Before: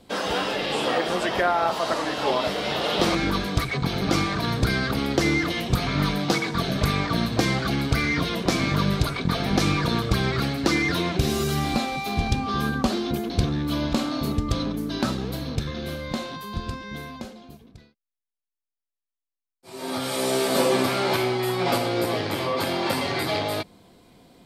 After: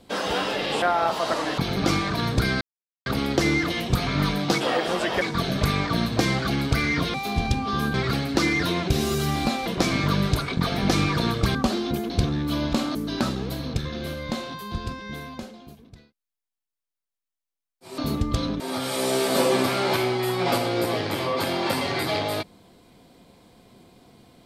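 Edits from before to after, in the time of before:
0.82–1.42 s: move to 6.41 s
2.18–3.83 s: delete
4.86 s: insert silence 0.45 s
8.34–10.23 s: swap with 11.95–12.75 s
14.15–14.77 s: move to 19.80 s

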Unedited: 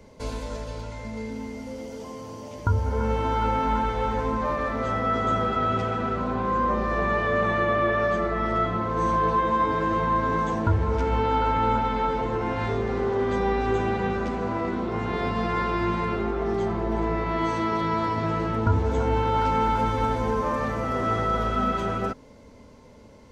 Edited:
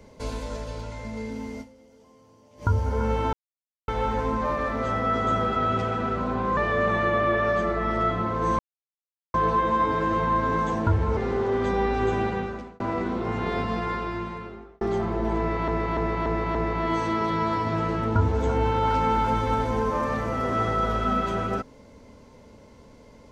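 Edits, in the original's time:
1.61–2.63 s: dip -17.5 dB, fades 0.30 s exponential
3.33–3.88 s: mute
6.57–7.12 s: delete
9.14 s: insert silence 0.75 s
10.97–12.84 s: delete
13.91–14.47 s: fade out
15.19–16.48 s: fade out
17.06–17.35 s: loop, 5 plays

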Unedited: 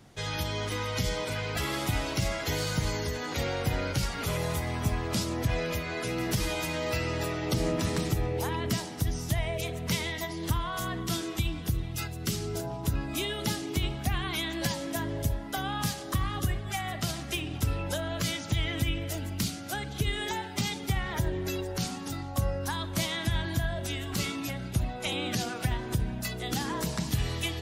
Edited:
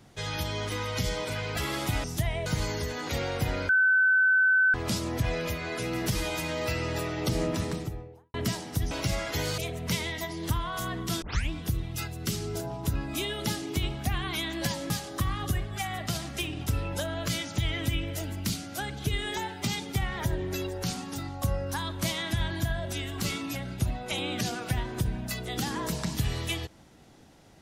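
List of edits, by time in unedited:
2.04–2.71 s: swap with 9.16–9.58 s
3.94–4.99 s: bleep 1.52 kHz -18.5 dBFS
7.66–8.59 s: studio fade out
11.22 s: tape start 0.28 s
14.90–15.84 s: delete

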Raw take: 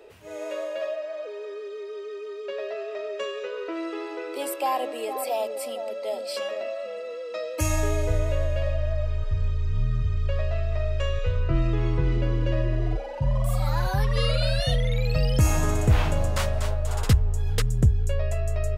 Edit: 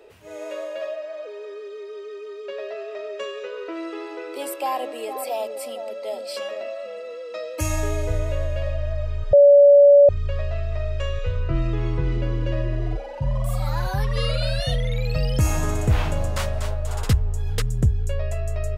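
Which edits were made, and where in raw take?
9.33–10.09 s: bleep 571 Hz -7.5 dBFS

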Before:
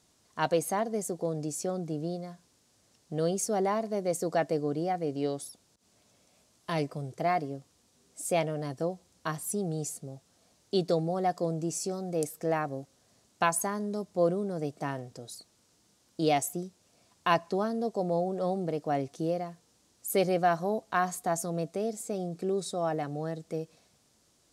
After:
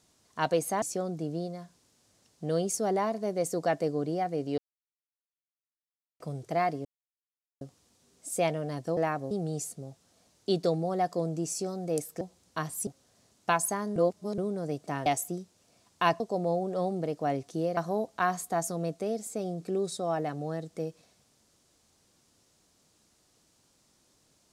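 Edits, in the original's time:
0.82–1.51 s: delete
5.27–6.89 s: mute
7.54 s: insert silence 0.76 s
8.90–9.56 s: swap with 12.46–12.80 s
13.89–14.31 s: reverse
14.99–16.31 s: delete
17.45–17.85 s: delete
19.42–20.51 s: delete

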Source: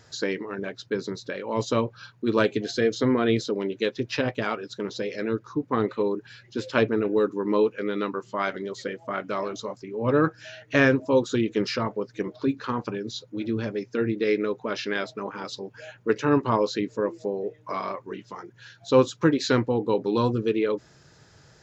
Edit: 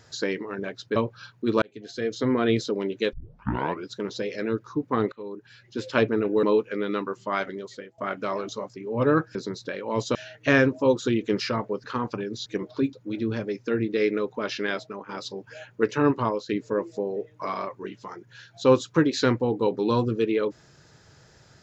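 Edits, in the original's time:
0.96–1.76 s: move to 10.42 s
2.42–3.23 s: fade in linear
3.93 s: tape start 0.75 s
5.92–6.70 s: fade in, from -19.5 dB
7.23–7.50 s: delete
8.47–9.05 s: fade out linear, to -17.5 dB
12.11–12.58 s: move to 13.20 s
15.04–15.36 s: fade out, to -9.5 dB
16.42–16.76 s: fade out, to -12.5 dB

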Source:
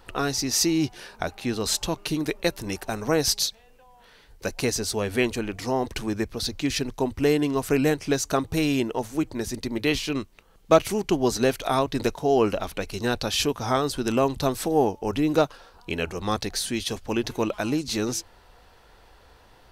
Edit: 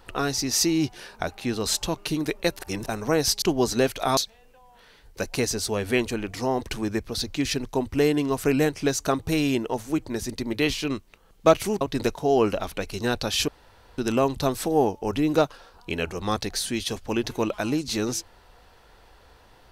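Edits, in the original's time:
2.59–2.86 s: reverse
11.06–11.81 s: move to 3.42 s
13.48–13.98 s: room tone

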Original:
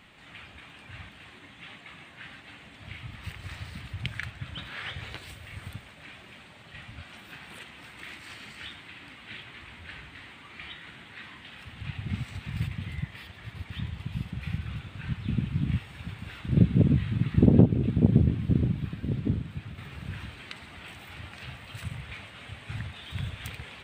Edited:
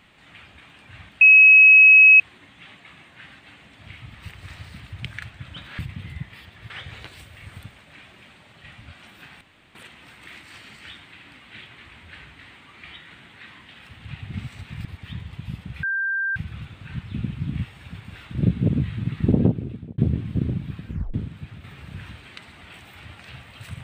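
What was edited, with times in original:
1.21 s: add tone 2.56 kHz -7 dBFS 0.99 s
7.51 s: insert room tone 0.34 s
12.61–13.52 s: move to 4.80 s
14.50 s: add tone 1.58 kHz -21.5 dBFS 0.53 s
17.51–18.12 s: fade out
19.02 s: tape stop 0.26 s

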